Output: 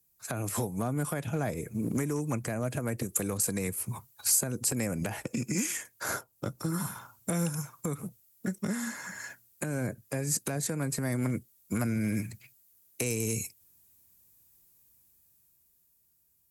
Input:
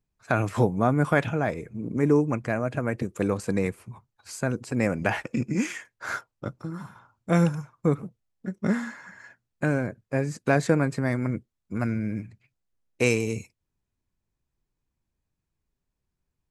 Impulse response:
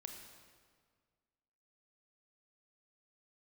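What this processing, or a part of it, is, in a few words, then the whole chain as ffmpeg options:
FM broadcast chain: -filter_complex "[0:a]highpass=60,dynaudnorm=f=200:g=17:m=4.22,acrossover=split=180|790[s0][s1][s2];[s0]acompressor=threshold=0.0251:ratio=4[s3];[s1]acompressor=threshold=0.0282:ratio=4[s4];[s2]acompressor=threshold=0.00891:ratio=4[s5];[s3][s4][s5]amix=inputs=3:normalize=0,aemphasis=mode=production:type=50fm,alimiter=limit=0.0841:level=0:latency=1:release=216,asoftclip=type=hard:threshold=0.0708,lowpass=f=15000:w=0.5412,lowpass=f=15000:w=1.3066,aemphasis=mode=production:type=50fm"

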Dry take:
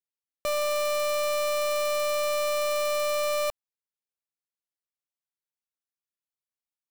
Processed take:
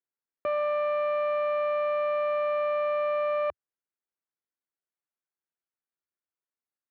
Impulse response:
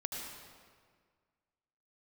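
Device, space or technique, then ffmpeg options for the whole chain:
bass cabinet: -af "highpass=f=75:w=0.5412,highpass=f=75:w=1.3066,equalizer=f=110:t=q:w=4:g=-8,equalizer=f=170:t=q:w=4:g=-4,equalizer=f=350:t=q:w=4:g=5,equalizer=f=1500:t=q:w=4:g=3,lowpass=f=2100:w=0.5412,lowpass=f=2100:w=1.3066"

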